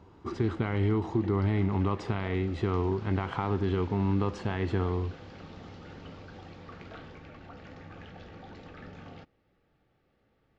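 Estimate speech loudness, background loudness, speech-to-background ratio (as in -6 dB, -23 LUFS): -30.0 LUFS, -47.5 LUFS, 17.5 dB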